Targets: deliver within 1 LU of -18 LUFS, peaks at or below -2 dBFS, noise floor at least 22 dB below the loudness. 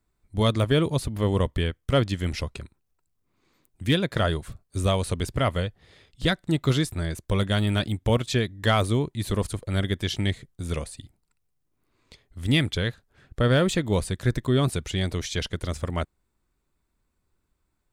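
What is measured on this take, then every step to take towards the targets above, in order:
loudness -26.0 LUFS; peak -11.0 dBFS; loudness target -18.0 LUFS
-> gain +8 dB

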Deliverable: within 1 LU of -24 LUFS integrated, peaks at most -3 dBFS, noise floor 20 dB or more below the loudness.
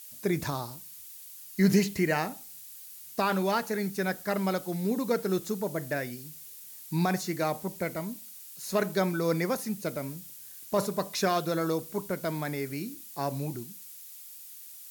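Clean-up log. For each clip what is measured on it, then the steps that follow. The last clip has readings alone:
noise floor -47 dBFS; noise floor target -51 dBFS; loudness -30.5 LUFS; peak -11.5 dBFS; loudness target -24.0 LUFS
-> noise print and reduce 6 dB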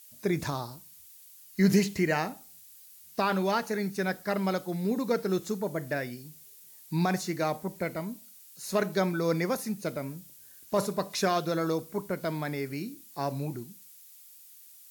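noise floor -53 dBFS; loudness -30.5 LUFS; peak -12.0 dBFS; loudness target -24.0 LUFS
-> gain +6.5 dB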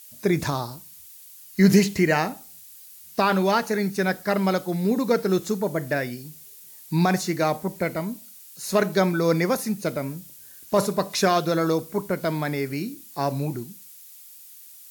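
loudness -24.0 LUFS; peak -5.5 dBFS; noise floor -46 dBFS

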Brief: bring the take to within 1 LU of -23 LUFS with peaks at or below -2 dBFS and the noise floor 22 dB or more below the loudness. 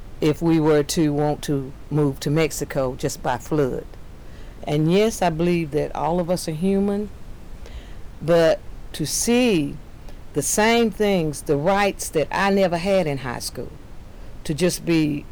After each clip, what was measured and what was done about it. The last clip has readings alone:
clipped 1.6%; flat tops at -12.0 dBFS; noise floor -40 dBFS; noise floor target -44 dBFS; loudness -21.5 LUFS; peak -12.0 dBFS; loudness target -23.0 LUFS
-> clip repair -12 dBFS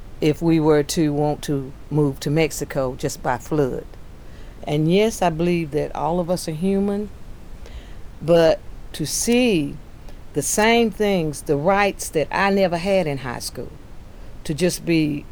clipped 0.0%; noise floor -40 dBFS; noise floor target -43 dBFS
-> noise print and reduce 6 dB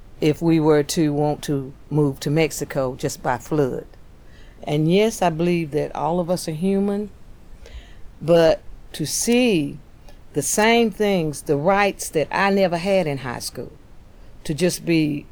noise floor -45 dBFS; loudness -20.5 LUFS; peak -3.5 dBFS; loudness target -23.0 LUFS
-> gain -2.5 dB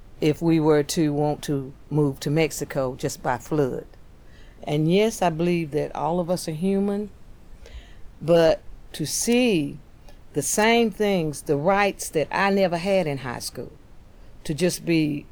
loudness -23.0 LUFS; peak -6.0 dBFS; noise floor -48 dBFS

